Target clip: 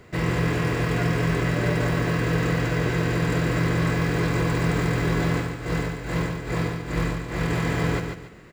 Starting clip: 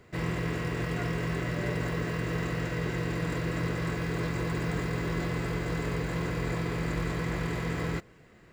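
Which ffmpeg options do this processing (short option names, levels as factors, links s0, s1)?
-filter_complex "[0:a]asettb=1/sr,asplit=3[s0][s1][s2];[s0]atrim=end=5.344[s3];[s1]atrim=start=5.34:end=7.5,asetpts=PTS-STARTPTS,afade=t=in:d=0.004:c=qsin,afade=t=out:st=2.156:d=0.004:c=qsin,tremolo=f=2.4:d=0.96[s4];[s2]atrim=start=7.496[s5];[s3][s4]acrossfade=d=0.004:c1=hsin:c2=qsin[s6];[s6][s5]acrossfade=d=0.004:c1=qsin:c2=hsin,aecho=1:1:143|286|429|572:0.501|0.155|0.0482|0.0149,volume=2.24"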